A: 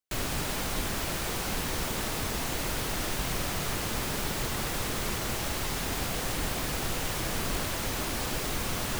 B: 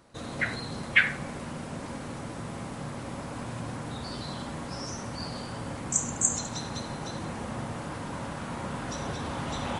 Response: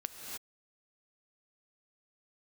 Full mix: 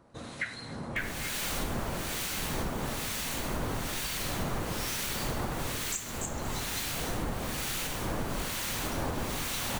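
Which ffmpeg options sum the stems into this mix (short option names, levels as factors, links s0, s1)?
-filter_complex "[0:a]bandreject=f=5100:w=20,adelay=850,volume=1.33[s0];[1:a]volume=0.794,asplit=2[s1][s2];[s2]volume=0.282[s3];[2:a]atrim=start_sample=2205[s4];[s3][s4]afir=irnorm=-1:irlink=0[s5];[s0][s1][s5]amix=inputs=3:normalize=0,acrossover=split=1500[s6][s7];[s6]aeval=exprs='val(0)*(1-0.7/2+0.7/2*cos(2*PI*1.1*n/s))':c=same[s8];[s7]aeval=exprs='val(0)*(1-0.7/2-0.7/2*cos(2*PI*1.1*n/s))':c=same[s9];[s8][s9]amix=inputs=2:normalize=0,alimiter=limit=0.0794:level=0:latency=1:release=495"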